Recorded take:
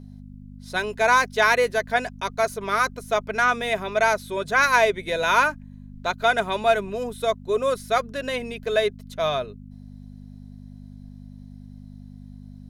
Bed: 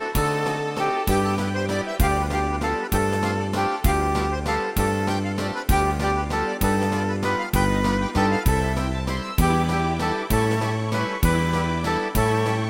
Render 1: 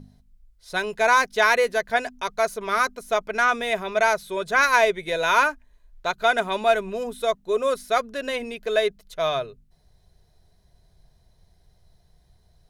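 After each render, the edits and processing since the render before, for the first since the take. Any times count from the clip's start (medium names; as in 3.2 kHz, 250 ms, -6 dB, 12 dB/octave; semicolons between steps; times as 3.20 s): de-hum 50 Hz, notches 5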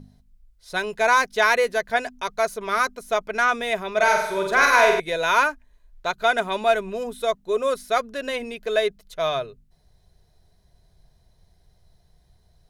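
3.93–5.00 s: flutter echo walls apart 8 m, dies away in 0.74 s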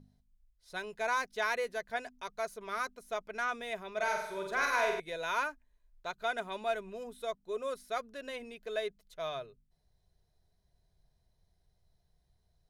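trim -14 dB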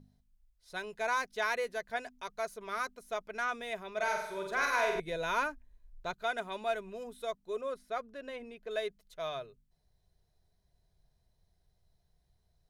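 4.95–6.14 s: bass shelf 330 Hz +11 dB; 7.61–8.71 s: treble shelf 3.3 kHz -11 dB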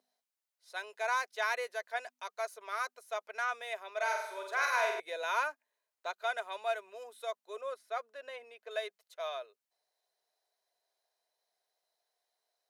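high-pass 520 Hz 24 dB/octave; band-stop 3.4 kHz, Q 26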